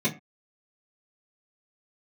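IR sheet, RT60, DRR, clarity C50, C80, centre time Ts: not exponential, -9.5 dB, 15.0 dB, 20.0 dB, 13 ms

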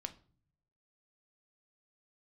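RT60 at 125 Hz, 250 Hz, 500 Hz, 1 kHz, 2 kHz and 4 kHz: 1.1, 0.85, 0.50, 0.40, 0.35, 0.35 s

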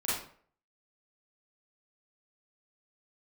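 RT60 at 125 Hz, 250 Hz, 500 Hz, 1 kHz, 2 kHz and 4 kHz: 0.50, 0.50, 0.55, 0.50, 0.45, 0.35 s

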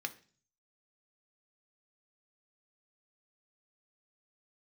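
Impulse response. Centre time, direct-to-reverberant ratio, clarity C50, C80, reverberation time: 4 ms, 7.0 dB, 17.0 dB, 21.5 dB, 0.40 s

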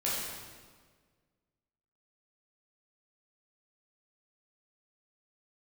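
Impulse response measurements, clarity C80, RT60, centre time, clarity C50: 1.5 dB, 1.6 s, 99 ms, -1.0 dB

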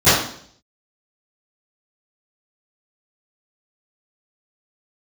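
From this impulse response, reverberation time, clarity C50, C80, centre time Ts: 0.60 s, 0.0 dB, 5.0 dB, 62 ms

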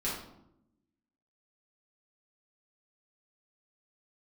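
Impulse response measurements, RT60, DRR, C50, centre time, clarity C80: 0.80 s, -8.5 dB, 2.0 dB, 48 ms, 6.5 dB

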